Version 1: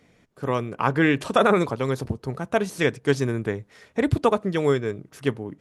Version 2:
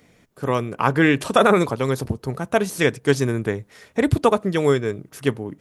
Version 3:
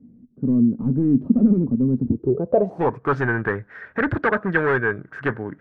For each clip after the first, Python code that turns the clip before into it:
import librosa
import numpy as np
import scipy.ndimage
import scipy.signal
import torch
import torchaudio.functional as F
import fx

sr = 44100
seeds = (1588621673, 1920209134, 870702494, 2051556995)

y1 = fx.high_shelf(x, sr, hz=9900.0, db=11.0)
y1 = y1 * 10.0 ** (3.0 / 20.0)
y2 = np.clip(y1, -10.0 ** (-18.5 / 20.0), 10.0 ** (-18.5 / 20.0))
y2 = fx.filter_sweep_lowpass(y2, sr, from_hz=240.0, to_hz=1600.0, start_s=2.04, end_s=3.23, q=7.9)